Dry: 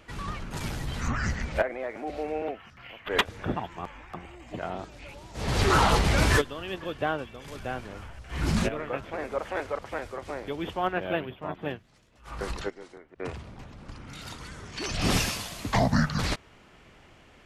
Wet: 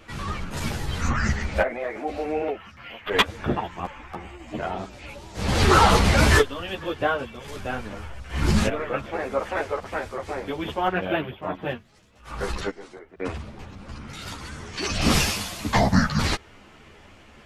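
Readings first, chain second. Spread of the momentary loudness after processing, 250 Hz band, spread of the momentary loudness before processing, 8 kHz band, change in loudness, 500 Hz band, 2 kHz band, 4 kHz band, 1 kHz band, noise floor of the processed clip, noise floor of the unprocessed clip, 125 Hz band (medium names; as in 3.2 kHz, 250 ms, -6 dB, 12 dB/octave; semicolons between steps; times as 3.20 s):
19 LU, +5.0 dB, 19 LU, +5.0 dB, +5.0 dB, +4.5 dB, +5.0 dB, +5.0 dB, +5.0 dB, -50 dBFS, -55 dBFS, +4.5 dB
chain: three-phase chorus; trim +8 dB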